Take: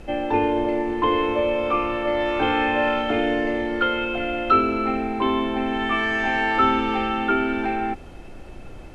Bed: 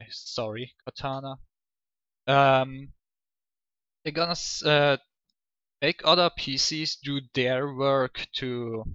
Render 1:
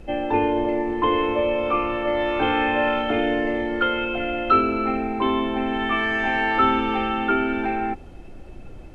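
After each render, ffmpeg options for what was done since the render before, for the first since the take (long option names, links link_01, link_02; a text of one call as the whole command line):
ffmpeg -i in.wav -af "afftdn=noise_reduction=6:noise_floor=-39" out.wav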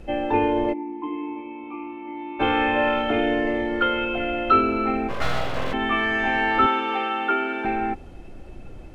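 ffmpeg -i in.wav -filter_complex "[0:a]asplit=3[link_01][link_02][link_03];[link_01]afade=type=out:start_time=0.72:duration=0.02[link_04];[link_02]asplit=3[link_05][link_06][link_07];[link_05]bandpass=frequency=300:width_type=q:width=8,volume=0dB[link_08];[link_06]bandpass=frequency=870:width_type=q:width=8,volume=-6dB[link_09];[link_07]bandpass=frequency=2240:width_type=q:width=8,volume=-9dB[link_10];[link_08][link_09][link_10]amix=inputs=3:normalize=0,afade=type=in:start_time=0.72:duration=0.02,afade=type=out:start_time=2.39:duration=0.02[link_11];[link_03]afade=type=in:start_time=2.39:duration=0.02[link_12];[link_04][link_11][link_12]amix=inputs=3:normalize=0,asplit=3[link_13][link_14][link_15];[link_13]afade=type=out:start_time=5.08:duration=0.02[link_16];[link_14]aeval=exprs='abs(val(0))':channel_layout=same,afade=type=in:start_time=5.08:duration=0.02,afade=type=out:start_time=5.72:duration=0.02[link_17];[link_15]afade=type=in:start_time=5.72:duration=0.02[link_18];[link_16][link_17][link_18]amix=inputs=3:normalize=0,asettb=1/sr,asplit=3[link_19][link_20][link_21];[link_19]atrim=end=6.664[link_22];[link_20]atrim=start=6.66:end=7.65,asetpts=PTS-STARTPTS,afade=type=in:duration=0.004:curve=qsin,afade=type=out:start_time=0.986:duration=0.004:curve=qsin,highpass=400[link_23];[link_21]atrim=start=7.646[link_24];[link_22][link_23]acrossfade=duration=0.004:curve1=hsin:curve2=qsin[link_25];[link_25][link_24]acrossfade=duration=0.004:curve1=qsin:curve2=hsin" out.wav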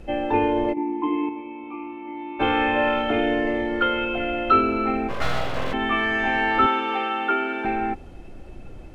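ffmpeg -i in.wav -filter_complex "[0:a]asplit=3[link_01][link_02][link_03];[link_01]atrim=end=0.772[link_04];[link_02]atrim=start=0.768:end=1.292,asetpts=PTS-STARTPTS,volume=6dB[link_05];[link_03]atrim=start=1.288[link_06];[link_04][link_05]acrossfade=duration=0.004:curve1=hsin:curve2=hsin[link_07];[link_07][link_06]acrossfade=duration=0.004:curve1=hsin:curve2=hsin" out.wav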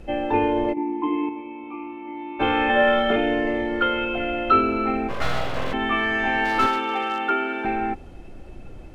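ffmpeg -i in.wav -filter_complex "[0:a]asettb=1/sr,asplit=3[link_01][link_02][link_03];[link_01]atrim=end=2.694[link_04];[link_02]atrim=start=2.69:end=3.16,asetpts=PTS-STARTPTS,afade=type=in:duration=0.004:curve=qsin,afade=type=out:start_time=0.466:duration=0.004:curve=qsin,aecho=1:1:5.1:0.77,atrim=end_sample=20727[link_05];[link_03]atrim=start=3.156[link_06];[link_04][link_05]acrossfade=duration=0.004:curve1=hsin:curve2=qsin[link_07];[link_07][link_06]acrossfade=duration=0.004:curve1=qsin:curve2=hsin,asplit=3[link_08][link_09][link_10];[link_08]afade=type=out:start_time=6.44:duration=0.02[link_11];[link_09]aeval=exprs='clip(val(0),-1,0.112)':channel_layout=same,afade=type=in:start_time=6.44:duration=0.02,afade=type=out:start_time=7.28:duration=0.02[link_12];[link_10]afade=type=in:start_time=7.28:duration=0.02[link_13];[link_11][link_12][link_13]amix=inputs=3:normalize=0" out.wav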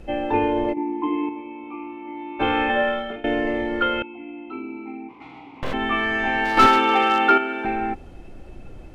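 ffmpeg -i in.wav -filter_complex "[0:a]asettb=1/sr,asplit=3[link_01][link_02][link_03];[link_01]atrim=end=4.024[link_04];[link_02]atrim=start=4.02:end=5.63,asetpts=PTS-STARTPTS,afade=type=in:duration=0.004:curve=qsin,afade=type=out:start_time=1.606:duration=0.004:curve=qsin,asplit=3[link_05][link_06][link_07];[link_05]bandpass=frequency=300:width_type=q:width=8,volume=0dB[link_08];[link_06]bandpass=frequency=870:width_type=q:width=8,volume=-6dB[link_09];[link_07]bandpass=frequency=2240:width_type=q:width=8,volume=-9dB[link_10];[link_08][link_09][link_10]amix=inputs=3:normalize=0[link_11];[link_03]atrim=start=5.626[link_12];[link_04][link_11]acrossfade=duration=0.004:curve1=hsin:curve2=qsin[link_13];[link_13][link_12]acrossfade=duration=0.004:curve1=qsin:curve2=hsin,asettb=1/sr,asplit=3[link_14][link_15][link_16];[link_14]atrim=end=6.574[link_17];[link_15]atrim=start=6.57:end=7.38,asetpts=PTS-STARTPTS,afade=type=in:duration=0.004:curve=qsin,afade=type=out:start_time=0.806:duration=0.004:curve=qsin,acontrast=88[link_18];[link_16]atrim=start=7.376[link_19];[link_17][link_18]acrossfade=duration=0.004:curve1=hsin:curve2=qsin[link_20];[link_20][link_19]acrossfade=duration=0.004:curve1=qsin:curve2=hsin,asplit=2[link_21][link_22];[link_21]atrim=end=3.24,asetpts=PTS-STARTPTS,afade=type=out:start_time=2.6:duration=0.64:silence=0.1[link_23];[link_22]atrim=start=3.24,asetpts=PTS-STARTPTS,afade=type=in:duration=0.004:curve=hsin:silence=0.1[link_24];[link_23][link_24]concat=n=2:v=0:a=1" out.wav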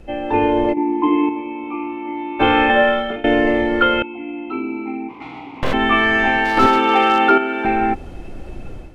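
ffmpeg -i in.wav -filter_complex "[0:a]acrossover=split=870[link_01][link_02];[link_02]alimiter=limit=-14.5dB:level=0:latency=1:release=355[link_03];[link_01][link_03]amix=inputs=2:normalize=0,dynaudnorm=framelen=230:gausssize=3:maxgain=8.5dB" out.wav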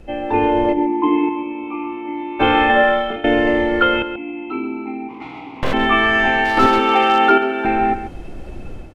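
ffmpeg -i in.wav -af "aecho=1:1:135:0.282" out.wav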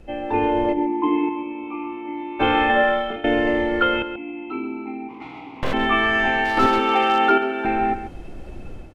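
ffmpeg -i in.wav -af "volume=-4dB" out.wav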